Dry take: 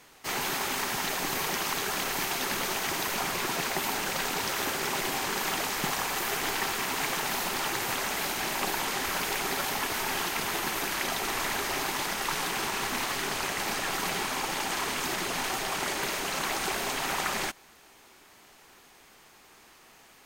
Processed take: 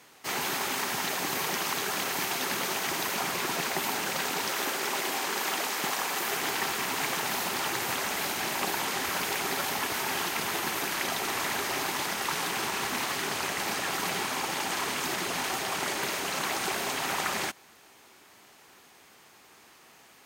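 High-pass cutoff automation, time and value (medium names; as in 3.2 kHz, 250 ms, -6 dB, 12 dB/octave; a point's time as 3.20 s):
4.17 s 110 Hz
4.77 s 250 Hz
5.94 s 250 Hz
6.79 s 81 Hz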